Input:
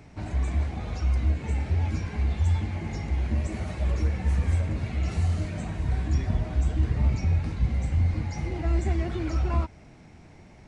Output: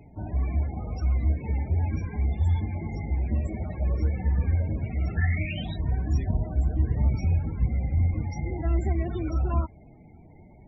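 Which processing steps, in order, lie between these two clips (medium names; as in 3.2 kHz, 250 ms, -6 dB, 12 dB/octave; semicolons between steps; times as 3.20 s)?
5.16–5.75 s: resonant low-pass 1.6 kHz -> 3.9 kHz, resonance Q 12; loudest bins only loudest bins 32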